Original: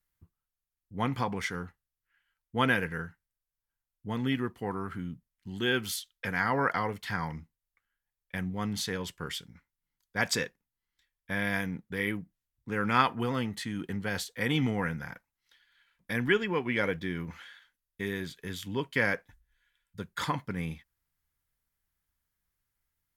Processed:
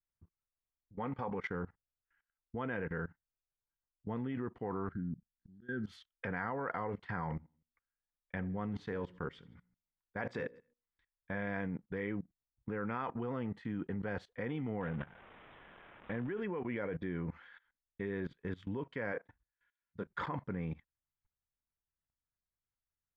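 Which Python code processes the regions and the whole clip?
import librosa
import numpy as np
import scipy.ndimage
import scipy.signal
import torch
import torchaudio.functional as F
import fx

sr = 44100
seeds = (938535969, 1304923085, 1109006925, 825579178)

y = fx.chain(x, sr, fx.low_shelf(hz=170.0, db=-10.0),
    fx.notch_comb(f0_hz=340.0), at=(0.96, 1.44))
y = fx.chain(y, sr, fx.curve_eq(hz=(120.0, 210.0, 1100.0, 1600.0, 2600.0, 4100.0), db=(0, 4, -21, 1, -28, 0)),
    fx.auto_swell(attack_ms=288.0), at=(4.92, 5.87))
y = fx.chain(y, sr, fx.hum_notches(base_hz=60, count=9),
    fx.echo_feedback(ms=79, feedback_pct=48, wet_db=-24), at=(7.24, 11.47))
y = fx.chain(y, sr, fx.crossing_spikes(level_db=-24.5),
    fx.high_shelf(hz=2300.0, db=-10.0),
    fx.resample_bad(factor=6, down='none', up='filtered'), at=(14.81, 16.37))
y = fx.chain(y, sr, fx.highpass(hz=180.0, slope=6),
    fx.doubler(ms=25.0, db=-8), at=(19.12, 20.07))
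y = scipy.signal.sosfilt(scipy.signal.butter(2, 1600.0, 'lowpass', fs=sr, output='sos'), y)
y = fx.dynamic_eq(y, sr, hz=500.0, q=1.1, threshold_db=-45.0, ratio=4.0, max_db=4)
y = fx.level_steps(y, sr, step_db=20)
y = F.gain(torch.from_numpy(y), 2.5).numpy()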